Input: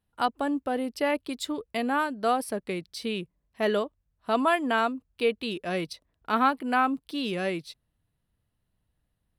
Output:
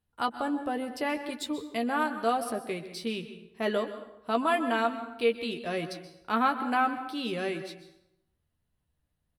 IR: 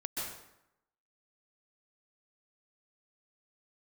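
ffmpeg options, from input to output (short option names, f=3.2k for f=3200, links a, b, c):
-filter_complex "[0:a]asplit=2[a][b];[b]adelay=13,volume=-6.5dB[c];[a][c]amix=inputs=2:normalize=0,asplit=2[d][e];[1:a]atrim=start_sample=2205[f];[e][f]afir=irnorm=-1:irlink=0,volume=-10.5dB[g];[d][g]amix=inputs=2:normalize=0,volume=-5dB"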